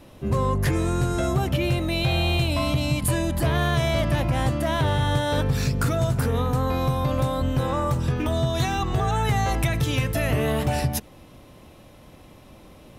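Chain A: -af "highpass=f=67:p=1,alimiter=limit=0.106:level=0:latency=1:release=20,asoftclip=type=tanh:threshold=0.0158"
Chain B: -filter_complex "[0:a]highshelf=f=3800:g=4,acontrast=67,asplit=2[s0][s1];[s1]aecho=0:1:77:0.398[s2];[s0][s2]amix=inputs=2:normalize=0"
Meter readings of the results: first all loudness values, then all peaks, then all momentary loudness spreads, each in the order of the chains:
-38.0 LUFS, -16.5 LUFS; -36.0 dBFS, -4.5 dBFS; 12 LU, 2 LU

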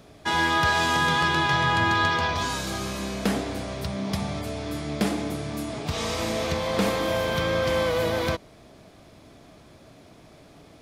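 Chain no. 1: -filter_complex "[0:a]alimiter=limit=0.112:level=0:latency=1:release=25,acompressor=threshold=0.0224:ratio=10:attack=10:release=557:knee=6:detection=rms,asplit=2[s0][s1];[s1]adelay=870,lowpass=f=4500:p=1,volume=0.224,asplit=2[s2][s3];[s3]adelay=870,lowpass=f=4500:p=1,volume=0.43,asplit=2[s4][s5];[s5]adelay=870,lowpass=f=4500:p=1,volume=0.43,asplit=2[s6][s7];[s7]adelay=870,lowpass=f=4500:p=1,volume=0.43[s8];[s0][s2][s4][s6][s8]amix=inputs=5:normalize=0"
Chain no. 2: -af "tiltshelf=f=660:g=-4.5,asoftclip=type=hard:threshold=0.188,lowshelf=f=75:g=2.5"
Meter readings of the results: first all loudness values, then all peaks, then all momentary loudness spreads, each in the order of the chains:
-38.0 LUFS, -23.5 LUFS; -24.0 dBFS, -14.0 dBFS; 13 LU, 13 LU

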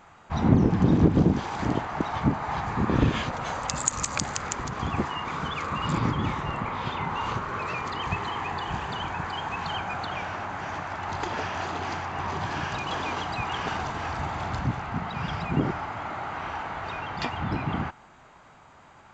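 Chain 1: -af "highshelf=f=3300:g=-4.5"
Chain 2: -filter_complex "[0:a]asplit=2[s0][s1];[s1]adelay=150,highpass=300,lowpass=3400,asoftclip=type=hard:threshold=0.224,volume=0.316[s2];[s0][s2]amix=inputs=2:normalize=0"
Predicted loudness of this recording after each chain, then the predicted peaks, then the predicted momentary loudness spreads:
-29.0 LUFS, -28.5 LUFS; -6.0 dBFS, -4.0 dBFS; 10 LU, 10 LU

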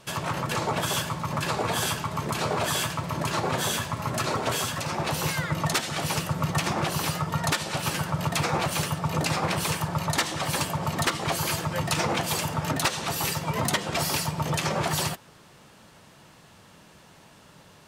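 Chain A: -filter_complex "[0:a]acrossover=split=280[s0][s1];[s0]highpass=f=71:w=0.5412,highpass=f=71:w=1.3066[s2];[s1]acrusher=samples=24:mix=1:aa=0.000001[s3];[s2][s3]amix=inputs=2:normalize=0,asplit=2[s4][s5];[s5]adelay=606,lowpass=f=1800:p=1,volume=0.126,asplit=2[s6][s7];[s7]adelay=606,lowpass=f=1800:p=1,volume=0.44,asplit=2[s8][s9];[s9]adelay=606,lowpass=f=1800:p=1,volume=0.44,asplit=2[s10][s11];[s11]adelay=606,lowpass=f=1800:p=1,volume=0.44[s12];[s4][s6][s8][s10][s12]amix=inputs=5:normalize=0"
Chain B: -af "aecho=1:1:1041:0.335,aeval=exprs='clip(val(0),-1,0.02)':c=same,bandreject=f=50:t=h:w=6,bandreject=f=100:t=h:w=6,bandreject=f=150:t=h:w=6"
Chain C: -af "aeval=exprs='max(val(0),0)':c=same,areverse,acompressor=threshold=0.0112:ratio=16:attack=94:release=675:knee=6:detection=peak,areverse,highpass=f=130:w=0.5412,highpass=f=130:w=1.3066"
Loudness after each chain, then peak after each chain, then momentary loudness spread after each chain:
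-28.5 LUFS, -30.0 LUFS, -42.0 LUFS; -9.5 dBFS, -11.0 dBFS, -22.0 dBFS; 3 LU, 3 LU, 16 LU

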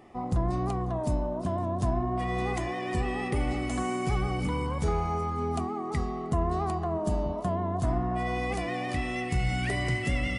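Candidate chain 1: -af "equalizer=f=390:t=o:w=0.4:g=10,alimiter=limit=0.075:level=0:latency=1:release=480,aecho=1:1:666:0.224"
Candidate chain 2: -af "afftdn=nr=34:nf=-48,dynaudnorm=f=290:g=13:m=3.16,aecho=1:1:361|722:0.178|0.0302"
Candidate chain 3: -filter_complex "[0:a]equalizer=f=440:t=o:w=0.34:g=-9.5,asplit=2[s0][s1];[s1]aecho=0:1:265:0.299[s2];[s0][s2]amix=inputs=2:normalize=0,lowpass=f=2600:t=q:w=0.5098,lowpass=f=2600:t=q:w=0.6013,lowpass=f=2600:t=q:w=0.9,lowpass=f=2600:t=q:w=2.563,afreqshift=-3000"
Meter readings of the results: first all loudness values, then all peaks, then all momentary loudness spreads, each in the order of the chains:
-32.5 LUFS, -22.0 LUFS, -26.0 LUFS; -21.0 dBFS, -5.0 dBFS, -16.0 dBFS; 2 LU, 9 LU, 4 LU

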